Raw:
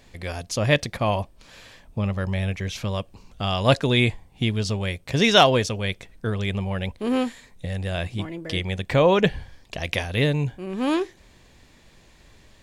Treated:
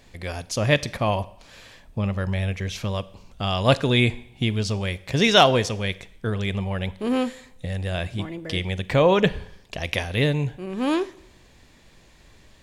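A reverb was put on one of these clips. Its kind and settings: Schroeder reverb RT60 0.73 s, combs from 33 ms, DRR 18 dB

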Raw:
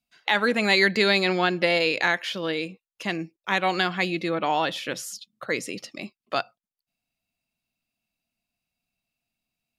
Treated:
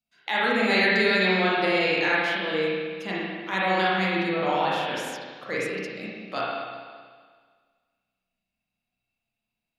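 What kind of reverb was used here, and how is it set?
spring tank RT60 1.7 s, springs 32/47 ms, chirp 30 ms, DRR -7 dB; trim -7 dB

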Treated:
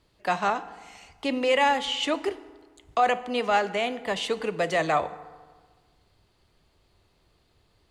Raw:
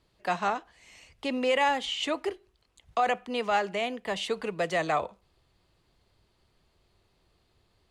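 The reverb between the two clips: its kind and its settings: FDN reverb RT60 1.5 s, low-frequency decay 1.1×, high-frequency decay 0.6×, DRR 13 dB; trim +3 dB

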